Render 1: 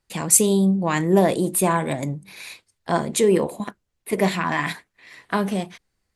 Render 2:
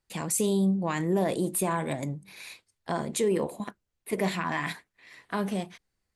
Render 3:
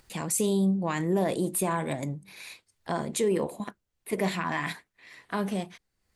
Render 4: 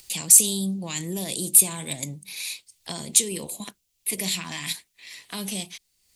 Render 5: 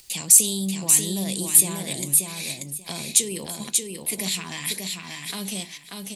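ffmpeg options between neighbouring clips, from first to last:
-af "alimiter=limit=0.266:level=0:latency=1:release=42,volume=0.501"
-af "acompressor=mode=upward:threshold=0.00501:ratio=2.5"
-filter_complex "[0:a]aexciter=amount=4.9:drive=6.5:freq=2300,acrossover=split=250|3000[s0][s1][s2];[s1]acompressor=threshold=0.0158:ratio=3[s3];[s0][s3][s2]amix=inputs=3:normalize=0,volume=0.794"
-af "aecho=1:1:586|1172|1758:0.631|0.114|0.0204"

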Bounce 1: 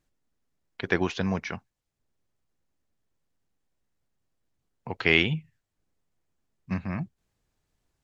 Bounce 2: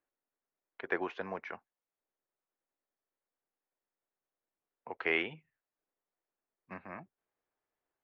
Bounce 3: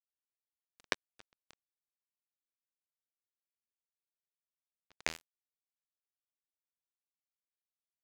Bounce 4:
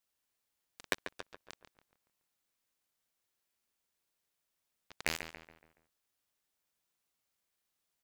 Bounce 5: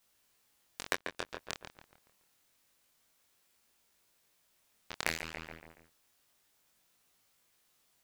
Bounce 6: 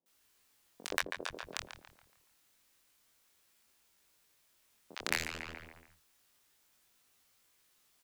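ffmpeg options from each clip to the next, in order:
-filter_complex "[0:a]acrossover=split=330 2400:gain=0.0708 1 0.0708[s0][s1][s2];[s0][s1][s2]amix=inputs=3:normalize=0,volume=0.562"
-af "acompressor=threshold=0.0178:ratio=4,acrusher=bits=3:mix=0:aa=0.5,volume=2.51"
-filter_complex "[0:a]asoftclip=type=tanh:threshold=0.0473,asplit=2[s0][s1];[s1]adelay=141,lowpass=f=2700:p=1,volume=0.398,asplit=2[s2][s3];[s3]adelay=141,lowpass=f=2700:p=1,volume=0.46,asplit=2[s4][s5];[s5]adelay=141,lowpass=f=2700:p=1,volume=0.46,asplit=2[s6][s7];[s7]adelay=141,lowpass=f=2700:p=1,volume=0.46,asplit=2[s8][s9];[s9]adelay=141,lowpass=f=2700:p=1,volume=0.46[s10];[s2][s4][s6][s8][s10]amix=inputs=5:normalize=0[s11];[s0][s11]amix=inputs=2:normalize=0,volume=3.76"
-af "acompressor=threshold=0.00708:ratio=4,flanger=delay=18:depth=7.4:speed=0.28,volume=5.62"
-filter_complex "[0:a]acrossover=split=160|640[s0][s1][s2];[s2]adelay=60[s3];[s0]adelay=100[s4];[s4][s1][s3]amix=inputs=3:normalize=0,volume=1.19"

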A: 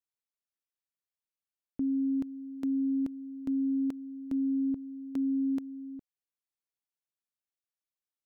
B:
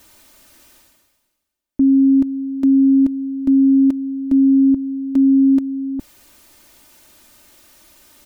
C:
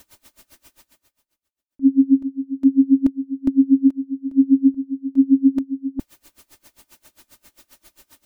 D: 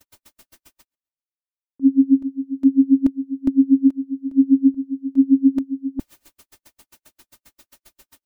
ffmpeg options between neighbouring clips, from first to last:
-af "lowshelf=f=490:g=7.5,aecho=1:1:3.3:0.63,areverse,acompressor=mode=upward:threshold=0.0355:ratio=2.5,areverse,volume=2.37"
-af "aeval=exprs='val(0)*pow(10,-28*(0.5-0.5*cos(2*PI*7.5*n/s))/20)':c=same,volume=1.41"
-af "agate=range=0.0224:threshold=0.00282:ratio=16:detection=peak"

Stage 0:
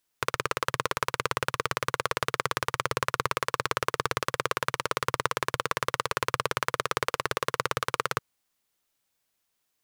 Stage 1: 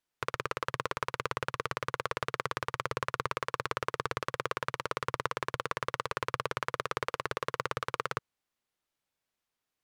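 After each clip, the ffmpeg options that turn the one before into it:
-af "aemphasis=mode=reproduction:type=cd,volume=0.562"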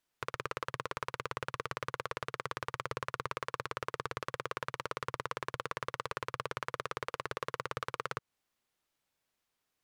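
-af "alimiter=limit=0.0944:level=0:latency=1:release=175,volume=1.41"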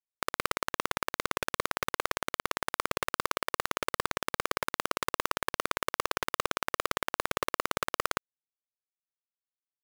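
-af "acrusher=bits=4:mix=0:aa=0.000001,volume=2"

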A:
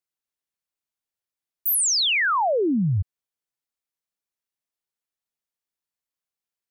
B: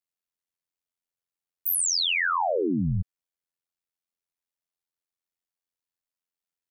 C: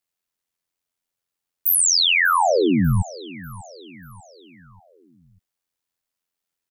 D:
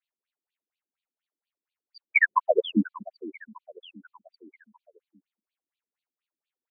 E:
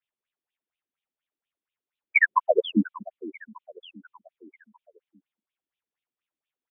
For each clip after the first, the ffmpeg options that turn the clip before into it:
-af "tremolo=f=87:d=0.857"
-af "aecho=1:1:592|1184|1776|2368:0.112|0.055|0.0269|0.0132,volume=2.37"
-af "afftfilt=real='re*between(b*sr/1024,260*pow(3400/260,0.5+0.5*sin(2*PI*4.2*pts/sr))/1.41,260*pow(3400/260,0.5+0.5*sin(2*PI*4.2*pts/sr))*1.41)':imag='im*between(b*sr/1024,260*pow(3400/260,0.5+0.5*sin(2*PI*4.2*pts/sr))/1.41,260*pow(3400/260,0.5+0.5*sin(2*PI*4.2*pts/sr))*1.41)':win_size=1024:overlap=0.75,volume=1.26"
-af "aresample=8000,aresample=44100,volume=1.12"

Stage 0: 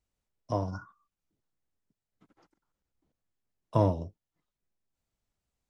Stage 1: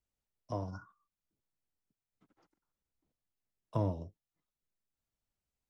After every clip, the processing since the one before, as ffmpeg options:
-filter_complex "[0:a]acrossover=split=380[s0][s1];[s1]acompressor=threshold=0.0398:ratio=6[s2];[s0][s2]amix=inputs=2:normalize=0,volume=0.473"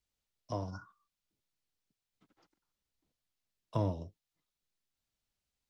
-af "equalizer=f=4000:t=o:w=1.7:g=7"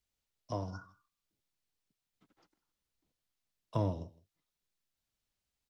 -af "aecho=1:1:160:0.0841"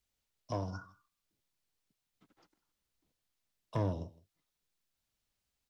-af "asoftclip=type=tanh:threshold=0.0398,volume=1.26"

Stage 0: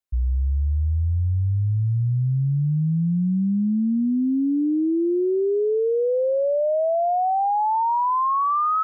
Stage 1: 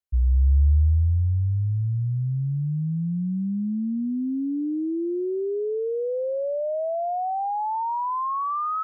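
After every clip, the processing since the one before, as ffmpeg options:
-af "equalizer=f=71:w=2:g=10,volume=0.531"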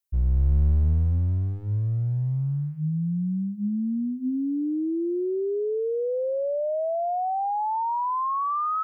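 -af "crystalizer=i=1.5:c=0,aeval=exprs='clip(val(0),-1,0.075)':c=same,bandreject=f=50:t=h:w=6,bandreject=f=100:t=h:w=6,bandreject=f=150:t=h:w=6,bandreject=f=200:t=h:w=6,bandreject=f=250:t=h:w=6"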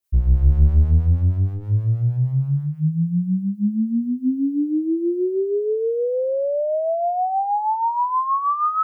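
-filter_complex "[0:a]acrossover=split=550[s0][s1];[s0]aeval=exprs='val(0)*(1-0.7/2+0.7/2*cos(2*PI*6.3*n/s))':c=same[s2];[s1]aeval=exprs='val(0)*(1-0.7/2-0.7/2*cos(2*PI*6.3*n/s))':c=same[s3];[s2][s3]amix=inputs=2:normalize=0,volume=2.66"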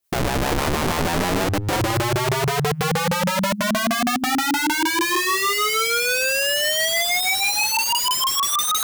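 -filter_complex "[0:a]asplit=2[s0][s1];[s1]alimiter=limit=0.237:level=0:latency=1:release=200,volume=1[s2];[s0][s2]amix=inputs=2:normalize=0,aeval=exprs='(mod(6.68*val(0)+1,2)-1)/6.68':c=same"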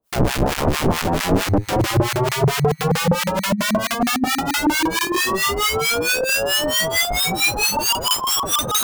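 -filter_complex "[0:a]asplit=2[s0][s1];[s1]acrusher=samples=21:mix=1:aa=0.000001,volume=0.447[s2];[s0][s2]amix=inputs=2:normalize=0,acrossover=split=1100[s3][s4];[s3]aeval=exprs='val(0)*(1-1/2+1/2*cos(2*PI*4.5*n/s))':c=same[s5];[s4]aeval=exprs='val(0)*(1-1/2-1/2*cos(2*PI*4.5*n/s))':c=same[s6];[s5][s6]amix=inputs=2:normalize=0,volume=1.68"

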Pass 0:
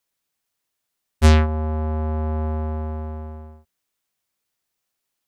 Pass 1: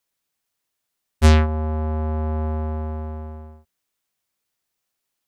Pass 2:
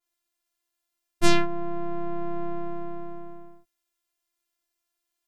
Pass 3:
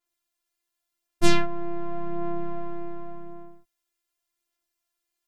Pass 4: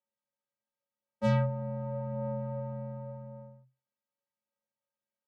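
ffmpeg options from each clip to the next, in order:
-af anull
-af "afftfilt=real='hypot(re,im)*cos(PI*b)':imag='0':win_size=512:overlap=0.75,adynamicequalizer=threshold=0.00794:dfrequency=1800:dqfactor=0.7:tfrequency=1800:tqfactor=0.7:attack=5:release=100:ratio=0.375:range=2:mode=boostabove:tftype=highshelf"
-af "aphaser=in_gain=1:out_gain=1:delay=2.5:decay=0.28:speed=0.88:type=sinusoidal,volume=0.891"
-af "afreqshift=-130,bandpass=f=530:t=q:w=1.1:csg=0"

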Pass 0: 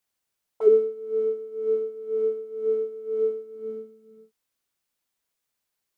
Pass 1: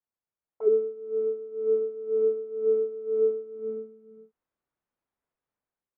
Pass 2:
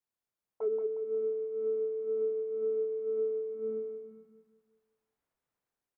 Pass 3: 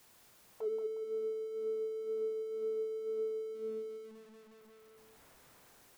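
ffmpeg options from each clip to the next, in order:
-af "dynaudnorm=f=460:g=3:m=2.99,lowpass=1300,volume=0.376"
-filter_complex "[0:a]acompressor=threshold=0.0316:ratio=5,asplit=2[s0][s1];[s1]aecho=0:1:180|360|540|720|900:0.501|0.19|0.0724|0.0275|0.0105[s2];[s0][s2]amix=inputs=2:normalize=0"
-af "aeval=exprs='val(0)+0.5*0.00376*sgn(val(0))':c=same,volume=0.531"

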